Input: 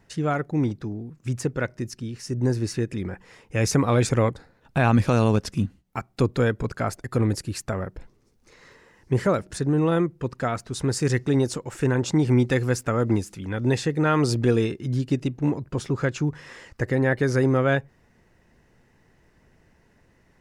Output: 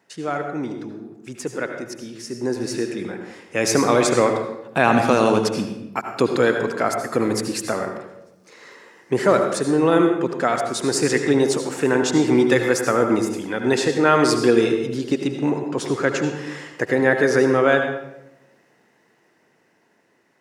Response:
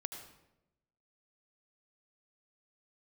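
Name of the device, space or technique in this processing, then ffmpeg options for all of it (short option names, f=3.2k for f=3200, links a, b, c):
far laptop microphone: -filter_complex "[0:a]highpass=280[a];[1:a]atrim=start_sample=2205[b];[a][b]afir=irnorm=-1:irlink=0,highpass=100,dynaudnorm=f=630:g=9:m=7dB,volume=2.5dB"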